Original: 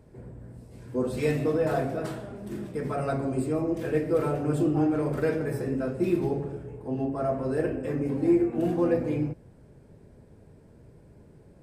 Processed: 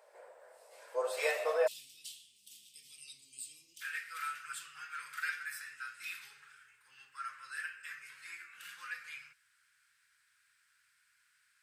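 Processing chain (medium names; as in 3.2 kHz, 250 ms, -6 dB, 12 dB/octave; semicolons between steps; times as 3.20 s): elliptic high-pass 550 Hz, stop band 50 dB, from 1.66 s 3 kHz, from 3.80 s 1.4 kHz; trim +3 dB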